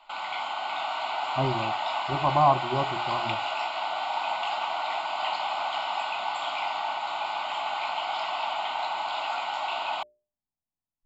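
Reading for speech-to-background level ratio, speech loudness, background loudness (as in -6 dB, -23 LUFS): 2.0 dB, -28.0 LUFS, -30.0 LUFS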